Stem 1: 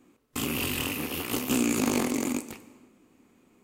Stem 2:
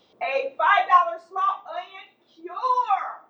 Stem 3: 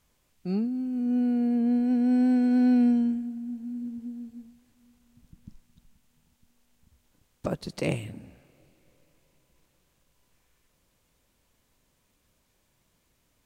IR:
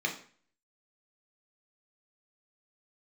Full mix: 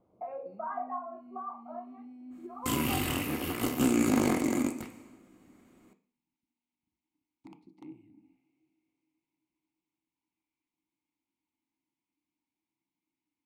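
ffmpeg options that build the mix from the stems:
-filter_complex "[0:a]adynamicequalizer=threshold=0.00447:dfrequency=2100:dqfactor=0.7:tfrequency=2100:tqfactor=0.7:attack=5:release=100:ratio=0.375:range=2.5:mode=cutabove:tftype=highshelf,adelay=2300,volume=0.5dB,asplit=2[link_01][link_02];[link_02]volume=-12.5dB[link_03];[1:a]lowpass=frequency=1100:width=0.5412,lowpass=frequency=1100:width=1.3066,lowshelf=frequency=200:gain=11.5,volume=-10dB,asplit=2[link_04][link_05];[link_05]volume=-15.5dB[link_06];[2:a]acrossover=split=540|1800[link_07][link_08][link_09];[link_07]acompressor=threshold=-29dB:ratio=4[link_10];[link_08]acompressor=threshold=-51dB:ratio=4[link_11];[link_09]acompressor=threshold=-59dB:ratio=4[link_12];[link_10][link_11][link_12]amix=inputs=3:normalize=0,aeval=exprs='(mod(11.2*val(0)+1,2)-1)/11.2':channel_layout=same,asplit=3[link_13][link_14][link_15];[link_13]bandpass=frequency=300:width_type=q:width=8,volume=0dB[link_16];[link_14]bandpass=frequency=870:width_type=q:width=8,volume=-6dB[link_17];[link_15]bandpass=frequency=2240:width_type=q:width=8,volume=-9dB[link_18];[link_16][link_17][link_18]amix=inputs=3:normalize=0,volume=-7dB,asplit=2[link_19][link_20];[link_20]volume=-12.5dB[link_21];[link_04][link_19]amix=inputs=2:normalize=0,highshelf=frequency=3400:gain=12,acompressor=threshold=-38dB:ratio=3,volume=0dB[link_22];[3:a]atrim=start_sample=2205[link_23];[link_03][link_06][link_21]amix=inputs=3:normalize=0[link_24];[link_24][link_23]afir=irnorm=-1:irlink=0[link_25];[link_01][link_22][link_25]amix=inputs=3:normalize=0"

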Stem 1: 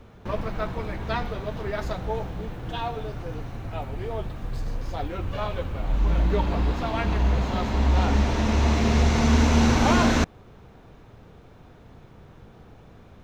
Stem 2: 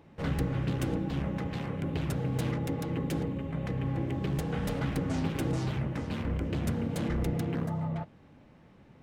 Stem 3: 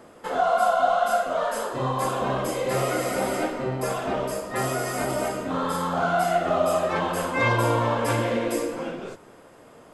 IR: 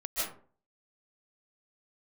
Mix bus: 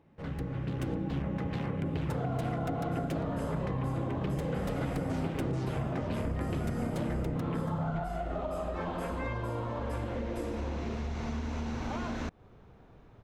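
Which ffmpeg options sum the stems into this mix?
-filter_complex "[0:a]adelay=2050,volume=-7dB[link_01];[1:a]dynaudnorm=framelen=340:gausssize=5:maxgain=10.5dB,volume=-7dB[link_02];[2:a]lowshelf=frequency=450:gain=6.5,adelay=1850,volume=-4.5dB[link_03];[link_01][link_03]amix=inputs=2:normalize=0,acompressor=threshold=-31dB:ratio=6,volume=0dB[link_04];[link_02][link_04]amix=inputs=2:normalize=0,highshelf=frequency=3400:gain=-7.5,acompressor=threshold=-29dB:ratio=6"

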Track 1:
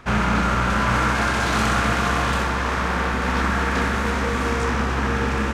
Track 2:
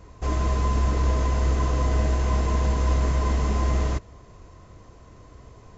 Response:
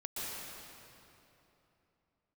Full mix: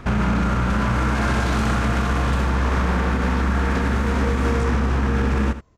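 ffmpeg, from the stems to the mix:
-filter_complex "[0:a]lowshelf=frequency=460:gain=9.5,volume=1.5dB,asplit=2[link_01][link_02];[link_02]volume=-16dB[link_03];[1:a]acontrast=66,adelay=600,volume=-18dB[link_04];[link_03]aecho=0:1:77:1[link_05];[link_01][link_04][link_05]amix=inputs=3:normalize=0,alimiter=limit=-12dB:level=0:latency=1:release=111"

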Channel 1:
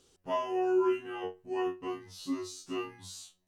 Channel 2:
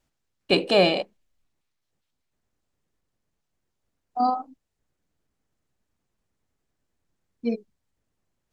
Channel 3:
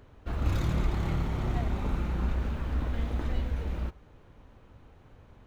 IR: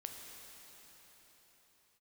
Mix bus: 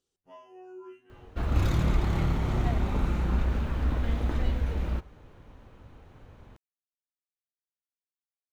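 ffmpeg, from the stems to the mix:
-filter_complex "[0:a]volume=-18.5dB[link_01];[2:a]adelay=1100,volume=3dB[link_02];[link_01][link_02]amix=inputs=2:normalize=0"

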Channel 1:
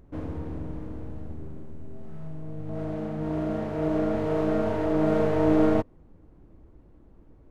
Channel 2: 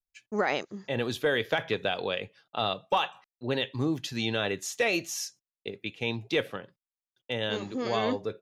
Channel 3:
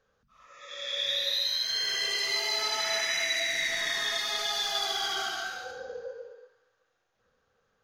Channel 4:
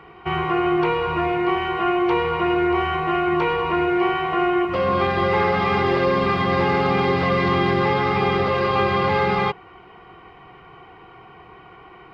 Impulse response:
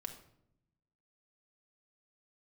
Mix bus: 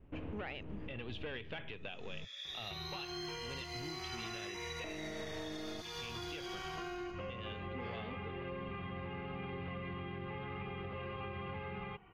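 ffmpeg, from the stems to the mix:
-filter_complex "[0:a]volume=-5.5dB,asplit=3[link_01][link_02][link_03];[link_01]atrim=end=2.25,asetpts=PTS-STARTPTS,afade=type=out:start_time=2.246:duration=0.004:curve=hsin[link_04];[link_02]atrim=start=2.25:end=4.84,asetpts=PTS-STARTPTS,volume=0[link_05];[link_03]atrim=start=4.84,asetpts=PTS-STARTPTS,afade=type=in:duration=0.004:curve=hsin[link_06];[link_04][link_05][link_06]concat=n=3:v=0:a=1[link_07];[1:a]lowshelf=frequency=180:gain=12,asoftclip=type=tanh:threshold=-21dB,volume=-7dB,afade=type=out:start_time=1.89:duration=0.23:silence=0.316228[link_08];[2:a]highpass=1300,adelay=1400,volume=-15.5dB[link_09];[3:a]aemphasis=mode=reproduction:type=bsi,acompressor=threshold=-22dB:ratio=6,adelay=2450,volume=-19dB,asplit=2[link_10][link_11];[link_11]volume=-14dB[link_12];[link_07][link_08][link_10]amix=inputs=3:normalize=0,lowpass=frequency=2800:width_type=q:width=4,acompressor=threshold=-38dB:ratio=6,volume=0dB[link_13];[4:a]atrim=start_sample=2205[link_14];[link_12][link_14]afir=irnorm=-1:irlink=0[link_15];[link_09][link_13][link_15]amix=inputs=3:normalize=0,agate=range=-33dB:threshold=-58dB:ratio=3:detection=peak,alimiter=level_in=9dB:limit=-24dB:level=0:latency=1:release=209,volume=-9dB"

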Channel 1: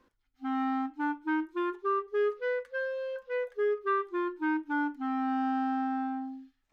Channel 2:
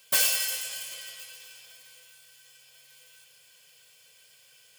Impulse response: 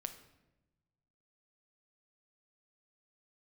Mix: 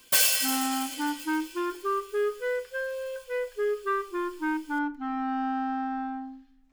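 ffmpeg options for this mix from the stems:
-filter_complex "[0:a]asubboost=boost=6.5:cutoff=56,volume=-1dB,asplit=2[link_01][link_02];[link_02]volume=-6.5dB[link_03];[1:a]volume=1.5dB[link_04];[2:a]atrim=start_sample=2205[link_05];[link_03][link_05]afir=irnorm=-1:irlink=0[link_06];[link_01][link_04][link_06]amix=inputs=3:normalize=0"

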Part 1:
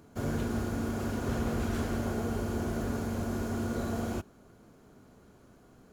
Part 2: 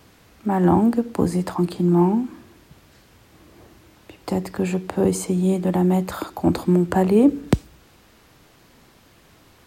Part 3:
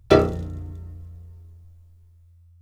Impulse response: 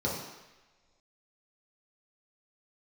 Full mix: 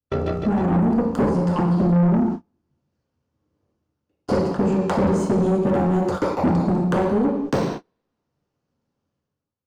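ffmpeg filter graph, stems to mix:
-filter_complex "[1:a]acompressor=threshold=-26dB:ratio=10,lowpass=7700,aeval=exprs='0.299*(cos(1*acos(clip(val(0)/0.299,-1,1)))-cos(1*PI/2))+0.0335*(cos(7*acos(clip(val(0)/0.299,-1,1)))-cos(7*PI/2))':channel_layout=same,volume=1.5dB,asplit=2[link_01][link_02];[link_02]volume=-3dB[link_03];[2:a]highshelf=frequency=5600:gain=-10.5,tremolo=f=65:d=0.621,volume=-7dB,asplit=3[link_04][link_05][link_06];[link_05]volume=-15dB[link_07];[link_06]volume=-3.5dB[link_08];[3:a]atrim=start_sample=2205[link_09];[link_03][link_07]amix=inputs=2:normalize=0[link_10];[link_10][link_09]afir=irnorm=-1:irlink=0[link_11];[link_08]aecho=0:1:157|314|471|628|785|942|1099:1|0.47|0.221|0.104|0.0488|0.0229|0.0108[link_12];[link_01][link_04][link_11][link_12]amix=inputs=4:normalize=0,agate=range=-36dB:threshold=-32dB:ratio=16:detection=peak,dynaudnorm=framelen=110:gausssize=9:maxgain=15dB,asoftclip=type=tanh:threshold=-14dB"

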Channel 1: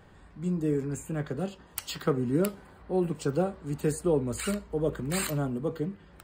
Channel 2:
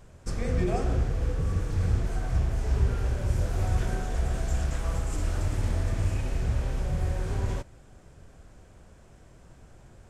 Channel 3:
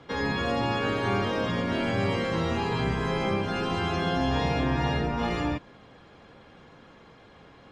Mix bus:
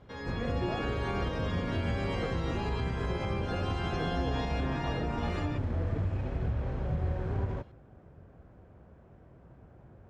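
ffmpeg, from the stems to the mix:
ffmpeg -i stem1.wav -i stem2.wav -i stem3.wav -filter_complex "[0:a]adelay=150,volume=-9.5dB[link_01];[1:a]highpass=66,volume=0.5dB[link_02];[2:a]dynaudnorm=framelen=140:gausssize=9:maxgain=9dB,volume=-13dB[link_03];[link_01][link_02]amix=inputs=2:normalize=0,adynamicsmooth=sensitivity=2:basefreq=1500,alimiter=limit=-21.5dB:level=0:latency=1:release=231,volume=0dB[link_04];[link_03][link_04]amix=inputs=2:normalize=0,alimiter=limit=-22.5dB:level=0:latency=1:release=185" out.wav

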